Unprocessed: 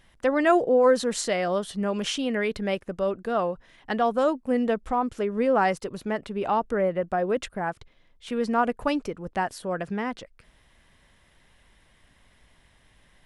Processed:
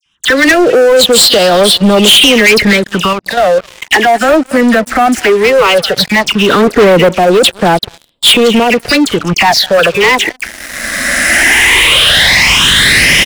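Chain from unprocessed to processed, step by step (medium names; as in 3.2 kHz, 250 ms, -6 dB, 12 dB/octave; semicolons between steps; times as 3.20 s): recorder AGC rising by 20 dB/s; phase dispersion lows, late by 61 ms, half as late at 2.5 kHz; peak limiter -18 dBFS, peak gain reduction 9 dB; frequency weighting D; delay 210 ms -23 dB; dynamic bell 250 Hz, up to -6 dB, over -43 dBFS, Q 4.1; phase shifter stages 8, 0.16 Hz, lowest notch 120–2100 Hz; 3.13–3.91 s: level held to a coarse grid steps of 10 dB; 6.49–7.09 s: small resonant body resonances 250/430 Hz, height 12 dB, ringing for 30 ms; waveshaping leveller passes 5; trim +6.5 dB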